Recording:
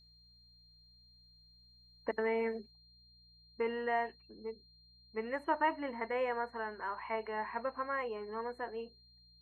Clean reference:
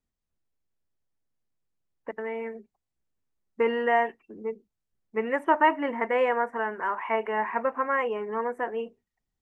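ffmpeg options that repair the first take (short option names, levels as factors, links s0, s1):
-af "bandreject=f=59.7:t=h:w=4,bandreject=f=119.4:t=h:w=4,bandreject=f=179.1:t=h:w=4,bandreject=f=4200:w=30,asetnsamples=n=441:p=0,asendcmd='2.71 volume volume 10.5dB',volume=1"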